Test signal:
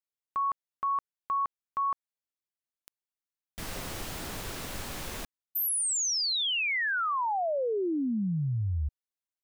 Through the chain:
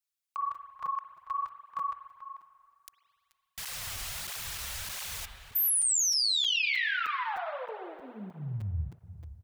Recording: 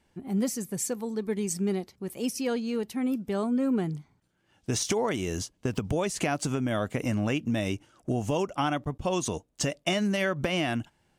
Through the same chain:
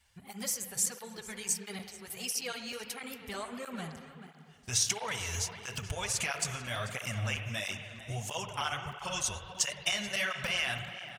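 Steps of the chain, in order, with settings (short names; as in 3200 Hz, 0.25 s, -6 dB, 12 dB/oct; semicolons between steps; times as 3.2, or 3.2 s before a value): passive tone stack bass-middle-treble 10-0-10; in parallel at -3 dB: compressor, threshold -46 dBFS; on the sum: outdoor echo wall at 75 m, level -12 dB; spring tank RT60 2.3 s, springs 48/58 ms, chirp 65 ms, DRR 6.5 dB; crackling interface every 0.31 s, samples 256, zero, from 0.55; tape flanging out of phase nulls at 1.5 Hz, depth 7.2 ms; gain +5 dB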